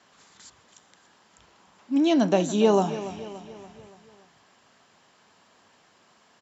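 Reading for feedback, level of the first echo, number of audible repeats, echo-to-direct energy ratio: 52%, -14.0 dB, 4, -12.5 dB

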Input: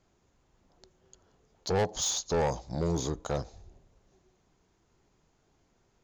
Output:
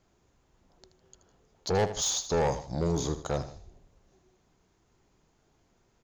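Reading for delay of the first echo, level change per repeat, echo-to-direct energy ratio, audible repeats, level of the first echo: 78 ms, -7.5 dB, -12.0 dB, 2, -12.5 dB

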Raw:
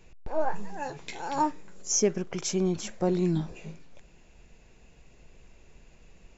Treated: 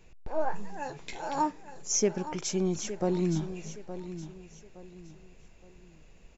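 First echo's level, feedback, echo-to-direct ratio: -12.0 dB, 34%, -11.5 dB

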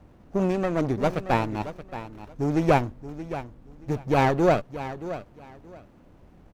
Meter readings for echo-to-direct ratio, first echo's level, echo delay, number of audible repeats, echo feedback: -13.0 dB, -13.0 dB, 0.626 s, 2, 21%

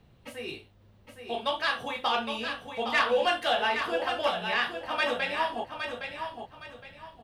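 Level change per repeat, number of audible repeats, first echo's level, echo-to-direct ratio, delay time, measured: -10.5 dB, 3, -7.0 dB, -6.5 dB, 0.814 s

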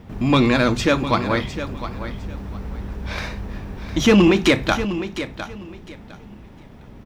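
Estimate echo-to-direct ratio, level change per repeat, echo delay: -11.5 dB, -13.0 dB, 0.707 s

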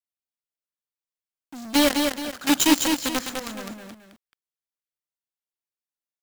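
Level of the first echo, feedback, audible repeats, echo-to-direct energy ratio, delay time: -4.5 dB, no steady repeat, 2, -4.0 dB, 0.206 s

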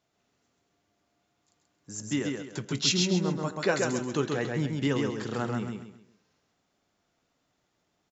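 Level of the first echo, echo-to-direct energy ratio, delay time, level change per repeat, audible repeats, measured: -3.5 dB, -3.0 dB, 0.133 s, -9.5 dB, 4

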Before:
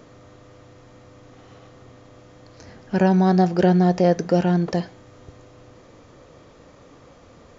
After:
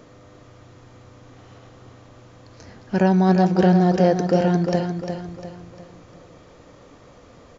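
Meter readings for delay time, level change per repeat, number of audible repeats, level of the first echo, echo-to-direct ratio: 0.351 s, -7.5 dB, 4, -7.0 dB, -6.0 dB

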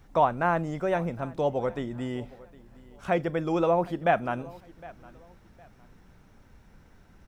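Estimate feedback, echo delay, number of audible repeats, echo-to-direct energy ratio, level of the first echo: 29%, 0.76 s, 2, -21.0 dB, -21.5 dB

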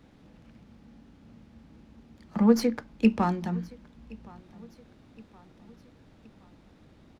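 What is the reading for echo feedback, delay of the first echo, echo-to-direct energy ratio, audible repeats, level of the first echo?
50%, 1.069 s, -22.5 dB, 2, -23.5 dB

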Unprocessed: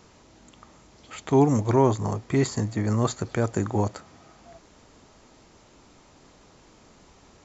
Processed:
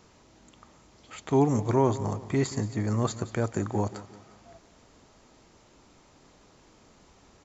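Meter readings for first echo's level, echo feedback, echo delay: -16.0 dB, 41%, 0.178 s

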